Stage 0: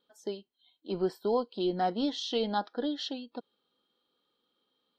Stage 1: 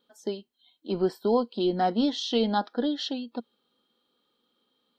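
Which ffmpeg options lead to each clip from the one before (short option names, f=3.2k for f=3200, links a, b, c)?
-af "equalizer=f=230:w=5:g=6,volume=4dB"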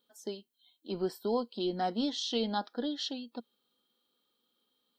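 -af "crystalizer=i=2:c=0,volume=-7.5dB"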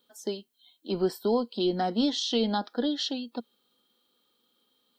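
-filter_complex "[0:a]acrossover=split=420[a][b];[b]acompressor=threshold=-33dB:ratio=6[c];[a][c]amix=inputs=2:normalize=0,volume=6.5dB"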